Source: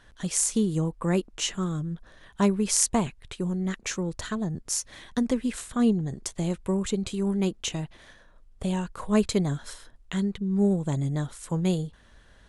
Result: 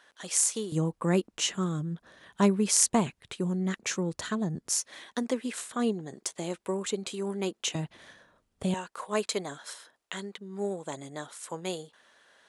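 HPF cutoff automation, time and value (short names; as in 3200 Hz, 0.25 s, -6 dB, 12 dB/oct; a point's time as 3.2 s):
480 Hz
from 0.72 s 140 Hz
from 4.76 s 340 Hz
from 7.75 s 120 Hz
from 8.74 s 490 Hz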